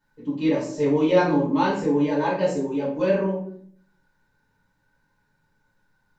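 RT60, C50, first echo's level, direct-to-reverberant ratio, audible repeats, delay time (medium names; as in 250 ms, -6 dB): 0.55 s, 4.5 dB, no echo, -8.5 dB, no echo, no echo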